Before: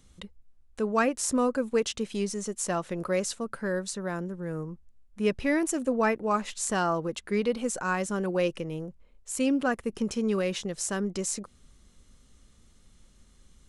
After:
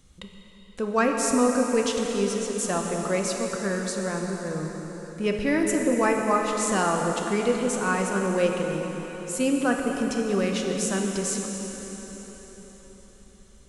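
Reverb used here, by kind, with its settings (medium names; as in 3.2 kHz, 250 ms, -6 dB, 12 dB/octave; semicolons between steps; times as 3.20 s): plate-style reverb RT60 4.7 s, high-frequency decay 0.9×, pre-delay 0 ms, DRR 1 dB; trim +1.5 dB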